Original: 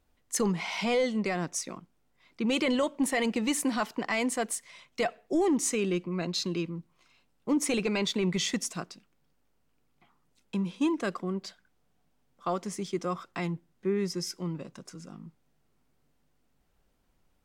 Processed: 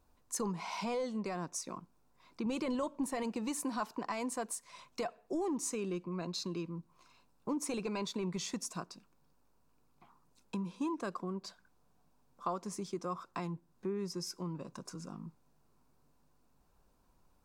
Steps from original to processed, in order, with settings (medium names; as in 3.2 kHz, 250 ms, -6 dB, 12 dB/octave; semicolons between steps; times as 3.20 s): 2.46–3.23 s: bass shelf 160 Hz +9.5 dB; compression 2:1, threshold -43 dBFS, peak gain reduction 12.5 dB; graphic EQ with 31 bands 1 kHz +8 dB, 2 kHz -9 dB, 3.15 kHz -8 dB; trim +1 dB